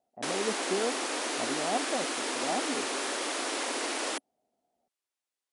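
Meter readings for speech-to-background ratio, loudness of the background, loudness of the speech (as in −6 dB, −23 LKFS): −4.5 dB, −31.5 LKFS, −36.0 LKFS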